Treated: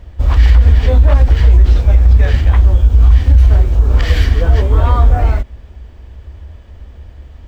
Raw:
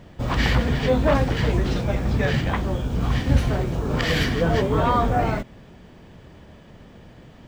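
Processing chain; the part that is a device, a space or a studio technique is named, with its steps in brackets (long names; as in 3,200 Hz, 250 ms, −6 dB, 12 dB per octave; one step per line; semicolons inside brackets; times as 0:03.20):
car stereo with a boomy subwoofer (low shelf with overshoot 100 Hz +13.5 dB, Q 3; brickwall limiter −2 dBFS, peak gain reduction 11 dB)
level +1 dB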